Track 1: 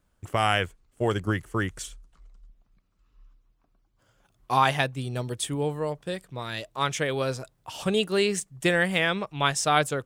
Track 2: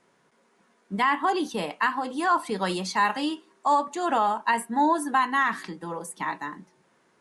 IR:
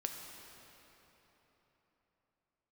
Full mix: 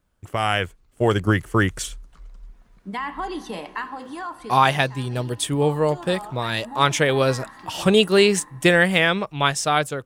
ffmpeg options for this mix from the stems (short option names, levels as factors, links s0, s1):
-filter_complex "[0:a]volume=1,asplit=2[s0][s1];[1:a]acompressor=threshold=0.0316:ratio=2,adelay=1950,volume=0.251,asplit=2[s2][s3];[s3]volume=0.376[s4];[s1]apad=whole_len=403657[s5];[s2][s5]sidechaincompress=threshold=0.0126:ratio=8:attack=16:release=1180[s6];[2:a]atrim=start_sample=2205[s7];[s4][s7]afir=irnorm=-1:irlink=0[s8];[s0][s6][s8]amix=inputs=3:normalize=0,dynaudnorm=f=150:g=9:m=3.16,equalizer=f=7500:t=o:w=0.77:g=-2"